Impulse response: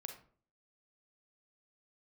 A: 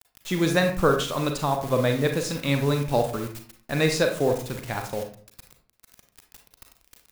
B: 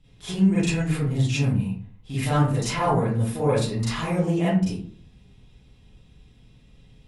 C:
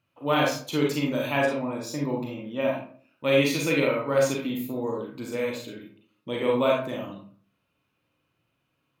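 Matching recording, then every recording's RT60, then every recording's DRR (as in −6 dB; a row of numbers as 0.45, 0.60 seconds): A; 0.50, 0.50, 0.50 seconds; 4.0, −11.5, −2.0 decibels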